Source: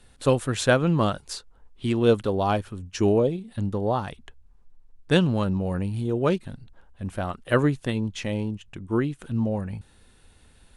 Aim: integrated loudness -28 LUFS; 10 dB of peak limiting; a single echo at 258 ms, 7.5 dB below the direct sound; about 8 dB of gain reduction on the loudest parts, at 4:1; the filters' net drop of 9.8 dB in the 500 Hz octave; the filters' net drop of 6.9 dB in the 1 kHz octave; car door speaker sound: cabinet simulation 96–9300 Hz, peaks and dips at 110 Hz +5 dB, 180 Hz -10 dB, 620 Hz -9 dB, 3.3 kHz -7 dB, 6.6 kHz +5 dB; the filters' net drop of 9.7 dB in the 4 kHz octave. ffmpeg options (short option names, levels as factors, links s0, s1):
-af "equalizer=f=500:t=o:g=-8.5,equalizer=f=1000:t=o:g=-4,equalizer=f=4000:t=o:g=-8,acompressor=threshold=0.0398:ratio=4,alimiter=level_in=1.41:limit=0.0631:level=0:latency=1,volume=0.708,highpass=96,equalizer=f=110:t=q:w=4:g=5,equalizer=f=180:t=q:w=4:g=-10,equalizer=f=620:t=q:w=4:g=-9,equalizer=f=3300:t=q:w=4:g=-7,equalizer=f=6600:t=q:w=4:g=5,lowpass=f=9300:w=0.5412,lowpass=f=9300:w=1.3066,aecho=1:1:258:0.422,volume=3.16"